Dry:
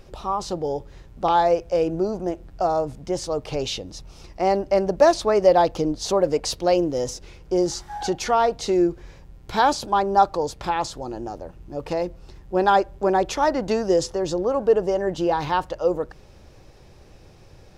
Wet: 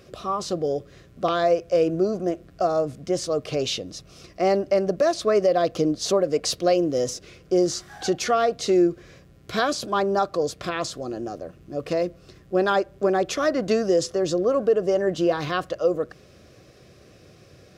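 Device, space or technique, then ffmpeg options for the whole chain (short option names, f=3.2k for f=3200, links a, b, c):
PA system with an anti-feedback notch: -af "highpass=110,asuperstop=centerf=880:order=4:qfactor=3.1,alimiter=limit=-12.5dB:level=0:latency=1:release=217,volume=1.5dB"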